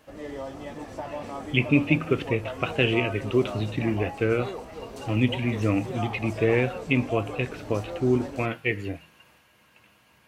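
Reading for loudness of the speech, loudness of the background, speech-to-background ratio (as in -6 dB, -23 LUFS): -26.0 LUFS, -37.0 LUFS, 11.0 dB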